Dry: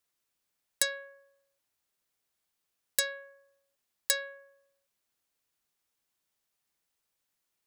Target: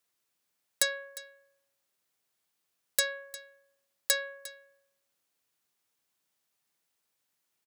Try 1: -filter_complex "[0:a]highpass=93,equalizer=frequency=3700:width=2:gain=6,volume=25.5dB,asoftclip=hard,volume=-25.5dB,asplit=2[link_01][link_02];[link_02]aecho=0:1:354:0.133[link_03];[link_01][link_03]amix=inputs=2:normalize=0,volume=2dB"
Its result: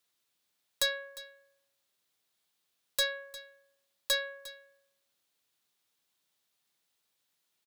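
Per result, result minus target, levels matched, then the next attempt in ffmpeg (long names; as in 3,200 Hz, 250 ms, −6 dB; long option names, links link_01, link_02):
gain into a clipping stage and back: distortion +10 dB; 4,000 Hz band +3.0 dB
-filter_complex "[0:a]highpass=93,equalizer=frequency=3700:width=2:gain=6,volume=16.5dB,asoftclip=hard,volume=-16.5dB,asplit=2[link_01][link_02];[link_02]aecho=0:1:354:0.133[link_03];[link_01][link_03]amix=inputs=2:normalize=0,volume=2dB"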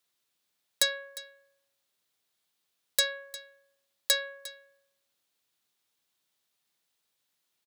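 4,000 Hz band +3.0 dB
-filter_complex "[0:a]highpass=93,volume=16.5dB,asoftclip=hard,volume=-16.5dB,asplit=2[link_01][link_02];[link_02]aecho=0:1:354:0.133[link_03];[link_01][link_03]amix=inputs=2:normalize=0,volume=2dB"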